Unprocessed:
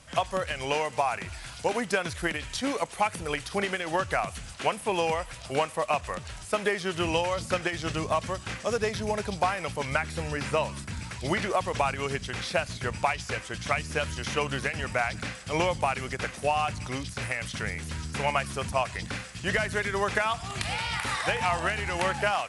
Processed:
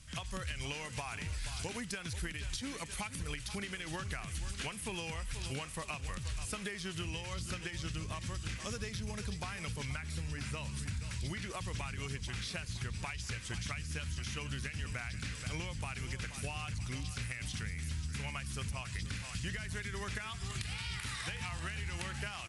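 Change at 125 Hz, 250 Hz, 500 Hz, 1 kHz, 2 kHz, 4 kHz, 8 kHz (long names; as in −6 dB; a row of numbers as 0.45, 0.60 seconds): −3.5, −9.0, −19.0, −18.0, −11.5, −7.5, −4.5 decibels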